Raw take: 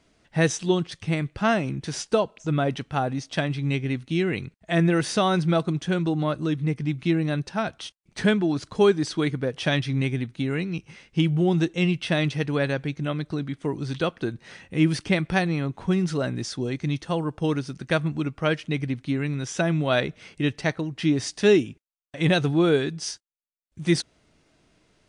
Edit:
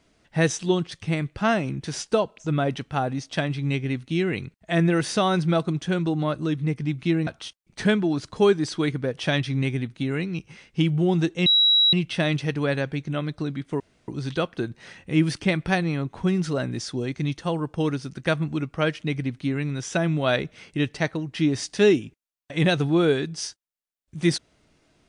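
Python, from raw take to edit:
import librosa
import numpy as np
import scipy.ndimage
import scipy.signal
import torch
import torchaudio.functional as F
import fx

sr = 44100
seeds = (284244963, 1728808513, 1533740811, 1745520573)

y = fx.edit(x, sr, fx.cut(start_s=7.27, length_s=0.39),
    fx.insert_tone(at_s=11.85, length_s=0.47, hz=3880.0, db=-14.5),
    fx.insert_room_tone(at_s=13.72, length_s=0.28), tone=tone)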